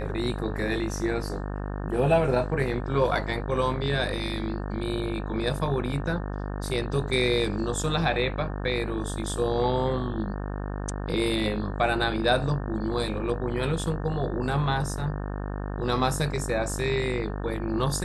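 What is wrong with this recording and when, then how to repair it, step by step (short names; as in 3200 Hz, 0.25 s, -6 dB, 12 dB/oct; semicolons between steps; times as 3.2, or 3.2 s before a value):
buzz 50 Hz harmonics 36 -32 dBFS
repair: de-hum 50 Hz, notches 36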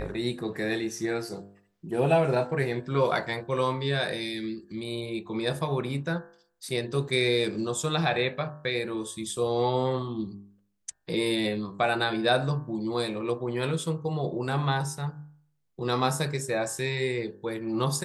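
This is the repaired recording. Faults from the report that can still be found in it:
none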